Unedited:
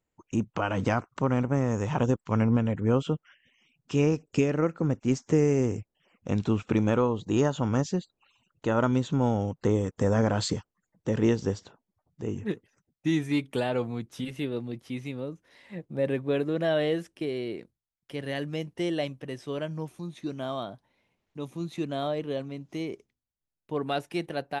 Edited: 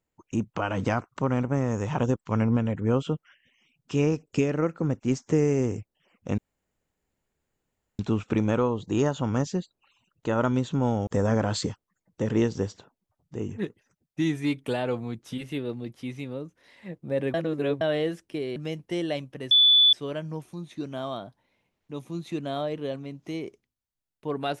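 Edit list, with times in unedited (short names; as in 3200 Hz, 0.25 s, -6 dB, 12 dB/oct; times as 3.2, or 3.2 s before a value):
6.38 insert room tone 1.61 s
9.46–9.94 cut
16.21–16.68 reverse
17.43–18.44 cut
19.39 add tone 3470 Hz -14 dBFS 0.42 s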